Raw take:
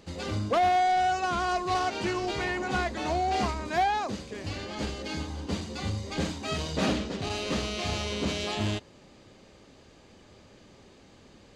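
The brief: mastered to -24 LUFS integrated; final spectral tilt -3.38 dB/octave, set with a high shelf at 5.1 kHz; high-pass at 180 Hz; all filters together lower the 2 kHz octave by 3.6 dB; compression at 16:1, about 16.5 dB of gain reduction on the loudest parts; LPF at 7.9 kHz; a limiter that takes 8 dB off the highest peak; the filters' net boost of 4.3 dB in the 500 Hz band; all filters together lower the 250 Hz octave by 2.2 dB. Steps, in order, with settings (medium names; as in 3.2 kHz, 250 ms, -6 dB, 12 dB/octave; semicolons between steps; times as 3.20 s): high-pass 180 Hz; low-pass 7.9 kHz; peaking EQ 250 Hz -5.5 dB; peaking EQ 500 Hz +8.5 dB; peaking EQ 2 kHz -7 dB; treble shelf 5.1 kHz +9 dB; compression 16:1, threshold -34 dBFS; trim +17 dB; peak limiter -16 dBFS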